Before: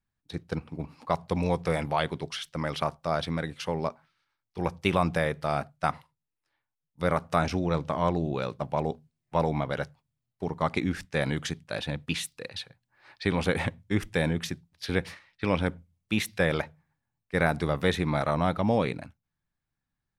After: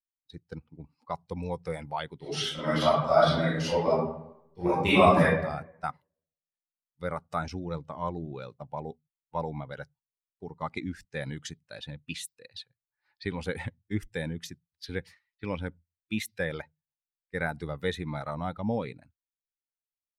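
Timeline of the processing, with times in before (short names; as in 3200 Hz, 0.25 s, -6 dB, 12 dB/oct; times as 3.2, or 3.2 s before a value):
2.17–5.22 reverb throw, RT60 1.2 s, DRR -10.5 dB
whole clip: per-bin expansion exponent 1.5; gain -1.5 dB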